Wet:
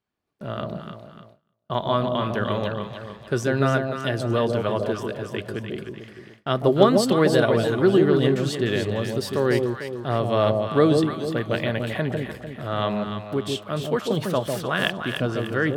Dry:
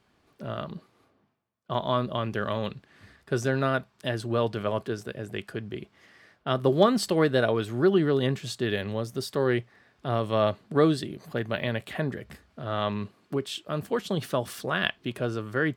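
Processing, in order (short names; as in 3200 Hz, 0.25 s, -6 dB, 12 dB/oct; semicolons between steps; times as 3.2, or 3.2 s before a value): echo with dull and thin repeats by turns 0.149 s, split 810 Hz, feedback 64%, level -3 dB; gate with hold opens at -36 dBFS; gain +3 dB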